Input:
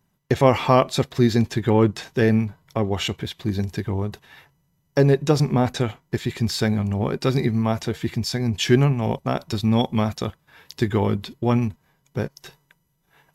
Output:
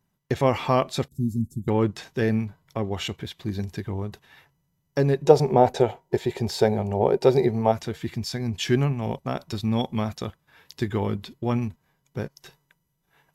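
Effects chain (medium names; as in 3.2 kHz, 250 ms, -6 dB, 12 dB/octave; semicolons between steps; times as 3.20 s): 1.08–1.68 s: Chebyshev band-stop 230–8600 Hz, order 3; 5.25–7.72 s: time-frequency box 350–980 Hz +12 dB; trim -5 dB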